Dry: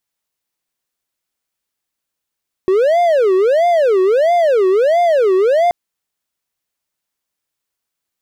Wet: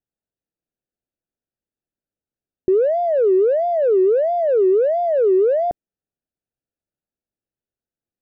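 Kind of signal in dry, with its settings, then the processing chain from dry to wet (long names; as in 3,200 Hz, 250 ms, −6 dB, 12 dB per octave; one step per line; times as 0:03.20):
siren wail 371–702 Hz 1.5 per second triangle −7.5 dBFS 3.03 s
moving average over 41 samples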